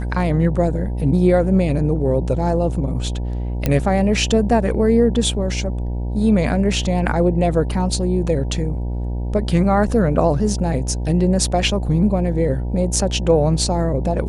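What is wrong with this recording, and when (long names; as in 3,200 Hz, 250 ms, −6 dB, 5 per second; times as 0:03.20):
mains buzz 60 Hz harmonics 16 −23 dBFS
0:03.66: click −5 dBFS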